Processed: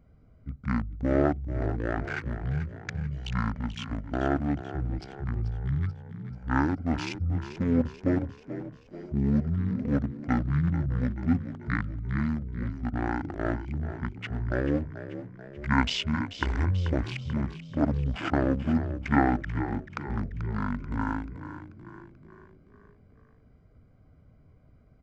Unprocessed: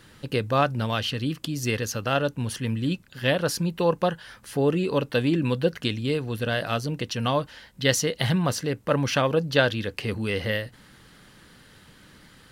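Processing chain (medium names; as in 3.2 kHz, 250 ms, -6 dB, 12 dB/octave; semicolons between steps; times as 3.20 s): local Wiener filter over 25 samples; frequency-shifting echo 218 ms, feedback 51%, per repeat +71 Hz, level -12 dB; speed mistake 15 ips tape played at 7.5 ips; trim -3 dB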